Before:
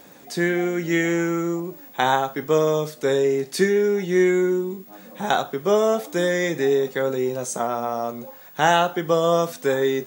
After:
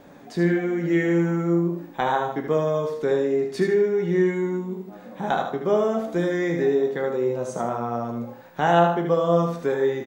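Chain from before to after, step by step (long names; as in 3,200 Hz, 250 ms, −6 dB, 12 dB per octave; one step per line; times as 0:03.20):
low-pass filter 1,300 Hz 6 dB per octave
low-shelf EQ 90 Hz +8 dB
hum removal 66.01 Hz, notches 39
in parallel at −2.5 dB: downward compressor, threshold −29 dBFS, peak gain reduction 14.5 dB
on the sum: tuned comb filter 57 Hz, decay 0.21 s, harmonics all, mix 70%
on a send: repeating echo 76 ms, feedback 31%, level −6 dB
on the sum: level +1 dB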